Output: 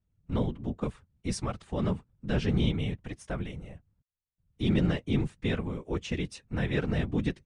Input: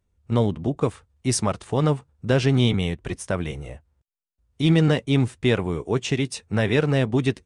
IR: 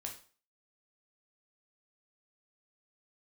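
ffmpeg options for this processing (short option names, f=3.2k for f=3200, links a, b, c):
-af "lowpass=f=2.2k:p=1,equalizer=f=530:w=0.34:g=-7.5,afftfilt=real='hypot(re,im)*cos(2*PI*random(0))':imag='hypot(re,im)*sin(2*PI*random(1))':win_size=512:overlap=0.75,volume=2.5dB"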